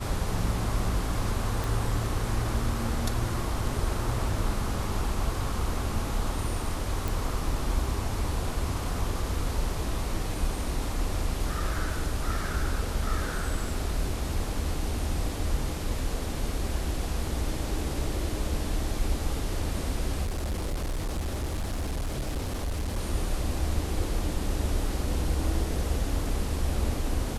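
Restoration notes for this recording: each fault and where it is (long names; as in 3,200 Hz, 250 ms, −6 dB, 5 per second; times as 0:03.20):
0:01.64: click
0:07.08: click
0:20.23–0:22.98: clipping −26.5 dBFS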